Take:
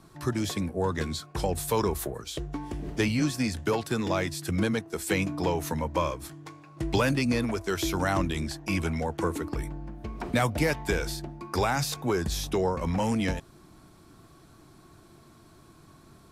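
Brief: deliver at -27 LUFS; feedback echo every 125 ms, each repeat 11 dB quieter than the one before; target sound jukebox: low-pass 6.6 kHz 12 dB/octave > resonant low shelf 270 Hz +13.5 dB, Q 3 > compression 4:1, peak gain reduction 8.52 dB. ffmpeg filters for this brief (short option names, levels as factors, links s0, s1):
-af "lowpass=6600,lowshelf=f=270:t=q:w=3:g=13.5,aecho=1:1:125|250|375:0.282|0.0789|0.0221,acompressor=threshold=0.178:ratio=4,volume=0.473"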